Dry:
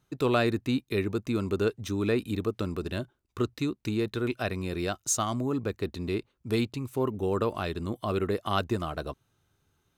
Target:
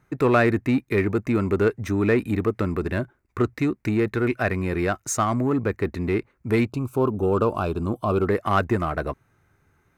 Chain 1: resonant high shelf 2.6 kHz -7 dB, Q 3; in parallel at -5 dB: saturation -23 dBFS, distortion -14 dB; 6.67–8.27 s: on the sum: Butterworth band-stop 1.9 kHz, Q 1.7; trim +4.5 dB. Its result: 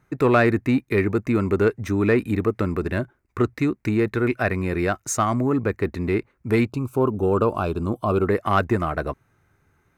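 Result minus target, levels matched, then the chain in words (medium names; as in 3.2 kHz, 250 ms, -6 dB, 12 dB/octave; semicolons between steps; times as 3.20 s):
saturation: distortion -7 dB
resonant high shelf 2.6 kHz -7 dB, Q 3; in parallel at -5 dB: saturation -31 dBFS, distortion -7 dB; 6.67–8.27 s: on the sum: Butterworth band-stop 1.9 kHz, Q 1.7; trim +4.5 dB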